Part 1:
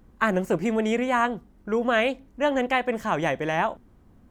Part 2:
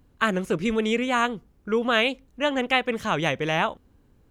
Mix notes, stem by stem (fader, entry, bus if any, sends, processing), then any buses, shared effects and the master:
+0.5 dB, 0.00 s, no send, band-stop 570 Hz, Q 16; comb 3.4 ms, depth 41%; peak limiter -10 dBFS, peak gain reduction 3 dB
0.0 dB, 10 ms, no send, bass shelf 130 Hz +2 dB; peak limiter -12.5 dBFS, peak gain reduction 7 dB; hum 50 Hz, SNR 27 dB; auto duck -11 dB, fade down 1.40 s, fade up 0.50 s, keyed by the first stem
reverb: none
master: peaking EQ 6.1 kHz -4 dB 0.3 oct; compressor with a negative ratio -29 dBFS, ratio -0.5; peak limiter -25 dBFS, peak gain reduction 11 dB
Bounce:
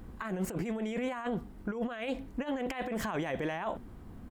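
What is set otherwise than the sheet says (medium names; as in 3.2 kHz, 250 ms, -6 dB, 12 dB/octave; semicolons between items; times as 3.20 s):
stem 1: missing comb 3.4 ms, depth 41%; stem 2 0.0 dB -> -9.5 dB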